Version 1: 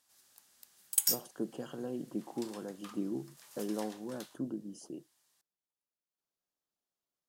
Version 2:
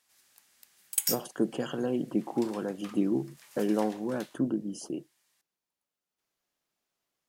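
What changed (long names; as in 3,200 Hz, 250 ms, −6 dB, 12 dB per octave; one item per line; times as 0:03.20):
speech +9.0 dB
master: add parametric band 2,200 Hz +7 dB 0.87 octaves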